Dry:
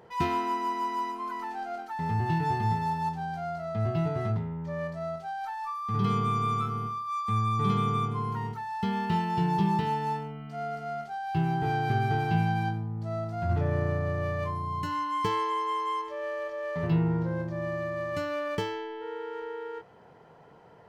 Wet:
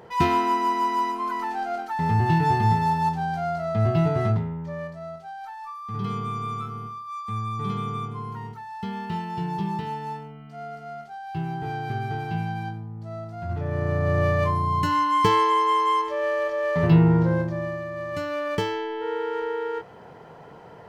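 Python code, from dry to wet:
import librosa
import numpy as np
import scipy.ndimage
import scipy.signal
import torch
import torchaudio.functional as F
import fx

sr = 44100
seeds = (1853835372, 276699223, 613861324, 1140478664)

y = fx.gain(x, sr, db=fx.line((4.28, 7.0), (5.01, -2.5), (13.58, -2.5), (14.18, 9.0), (17.33, 9.0), (17.85, -0.5), (19.1, 9.0)))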